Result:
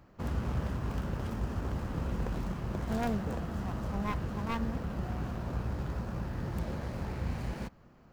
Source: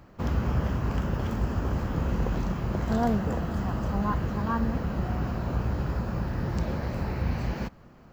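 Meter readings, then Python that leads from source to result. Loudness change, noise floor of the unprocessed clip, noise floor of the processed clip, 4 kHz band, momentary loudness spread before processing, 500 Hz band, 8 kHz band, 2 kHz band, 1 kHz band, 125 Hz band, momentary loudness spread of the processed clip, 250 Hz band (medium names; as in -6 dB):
-6.5 dB, -52 dBFS, -59 dBFS, -4.5 dB, 4 LU, -6.5 dB, no reading, -5.5 dB, -7.0 dB, -6.5 dB, 4 LU, -6.5 dB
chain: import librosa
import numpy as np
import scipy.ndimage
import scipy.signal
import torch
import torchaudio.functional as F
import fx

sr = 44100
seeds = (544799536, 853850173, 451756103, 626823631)

y = fx.tracing_dist(x, sr, depth_ms=0.49)
y = y * 10.0 ** (-6.5 / 20.0)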